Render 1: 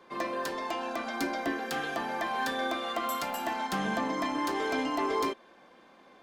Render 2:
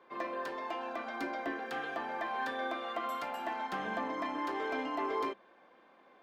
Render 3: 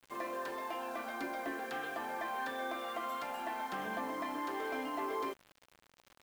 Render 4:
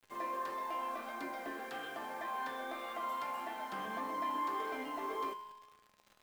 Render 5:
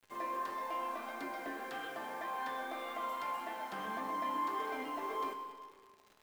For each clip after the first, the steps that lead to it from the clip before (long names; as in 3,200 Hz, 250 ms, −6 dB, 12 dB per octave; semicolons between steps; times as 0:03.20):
bass and treble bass −8 dB, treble −14 dB; hum removal 66.17 Hz, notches 3; level −4 dB
in parallel at +0.5 dB: brickwall limiter −33 dBFS, peak gain reduction 8.5 dB; on the sum: bit reduction 8 bits; level −6.5 dB
tuned comb filter 210 Hz, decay 1.2 s, mix 80%; flanger 1.7 Hz, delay 8.7 ms, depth 7.9 ms, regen +73%; level +14 dB
convolution reverb RT60 1.9 s, pre-delay 85 ms, DRR 9 dB